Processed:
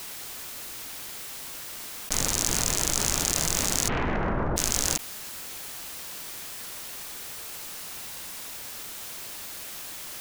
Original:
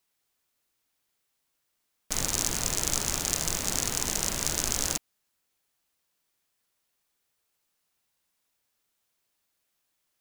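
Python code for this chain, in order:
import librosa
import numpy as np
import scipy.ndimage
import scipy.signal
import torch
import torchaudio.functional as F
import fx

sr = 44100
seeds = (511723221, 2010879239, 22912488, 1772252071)

y = fx.lowpass(x, sr, hz=fx.line((3.87, 2700.0), (4.56, 1200.0)), slope=24, at=(3.87, 4.56), fade=0.02)
y = fx.env_flatten(y, sr, amount_pct=100)
y = F.gain(torch.from_numpy(y), -1.0).numpy()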